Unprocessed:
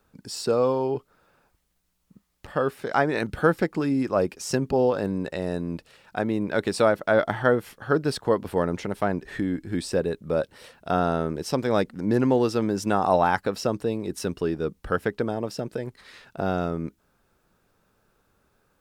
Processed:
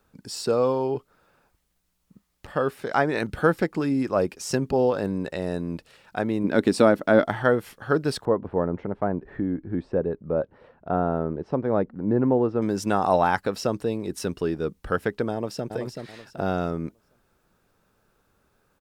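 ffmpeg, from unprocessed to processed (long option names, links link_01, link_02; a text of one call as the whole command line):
ffmpeg -i in.wav -filter_complex "[0:a]asettb=1/sr,asplit=3[link_01][link_02][link_03];[link_01]atrim=end=6.444[link_04];[link_02]atrim=start=6.44:end=7.26,asetpts=PTS-STARTPTS,afade=type=in:duration=0.004:curve=qsin,afade=type=out:start_time=0.816:duration=0.004:curve=qsin,equalizer=frequency=260:width_type=o:width=0.97:gain=10.5[link_05];[link_03]atrim=start=7.256[link_06];[link_04][link_05]acrossfade=duration=0.004:curve1=hsin:curve2=qsin[link_07];[link_07][link_06]acrossfade=duration=0.004:curve1=qsin:curve2=hsin,asettb=1/sr,asplit=3[link_08][link_09][link_10];[link_08]atrim=end=8.254[link_11];[link_09]atrim=start=8.25:end=12.62,asetpts=PTS-STARTPTS,afade=type=in:duration=0.004:curve=qsin,afade=type=out:start_time=4.366:duration=0.004:curve=qsin,lowpass=1100[link_12];[link_10]atrim=start=12.616[link_13];[link_11][link_12]acrossfade=duration=0.004:curve1=hsin:curve2=qsin[link_14];[link_14][link_13]acrossfade=duration=0.004:curve1=qsin:curve2=hsin,asplit=2[link_15][link_16];[link_16]afade=type=in:start_time=15.32:duration=0.01,afade=type=out:start_time=15.73:duration=0.01,aecho=0:1:380|760|1140|1520:0.501187|0.150356|0.0451069|0.0135321[link_17];[link_15][link_17]amix=inputs=2:normalize=0" out.wav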